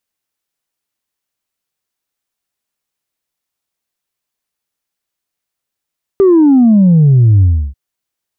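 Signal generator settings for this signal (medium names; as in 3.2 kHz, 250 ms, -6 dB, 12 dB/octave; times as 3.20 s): sub drop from 400 Hz, over 1.54 s, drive 0.5 dB, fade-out 0.32 s, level -4.5 dB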